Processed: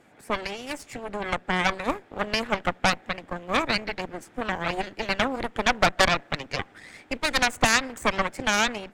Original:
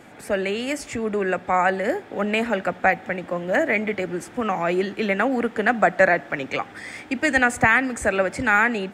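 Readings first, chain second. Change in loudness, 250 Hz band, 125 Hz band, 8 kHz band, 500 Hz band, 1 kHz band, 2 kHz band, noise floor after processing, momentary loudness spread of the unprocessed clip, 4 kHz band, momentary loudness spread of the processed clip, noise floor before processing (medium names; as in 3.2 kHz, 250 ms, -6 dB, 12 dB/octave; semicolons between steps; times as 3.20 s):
-4.0 dB, -6.5 dB, -2.0 dB, +4.0 dB, -7.5 dB, -3.5 dB, -5.0 dB, -55 dBFS, 10 LU, +7.5 dB, 12 LU, -43 dBFS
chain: Chebyshev shaper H 3 -11 dB, 5 -27 dB, 6 -11 dB, 8 -26 dB, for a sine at -4.5 dBFS; harmonic-percussive split percussive +5 dB; trim -5 dB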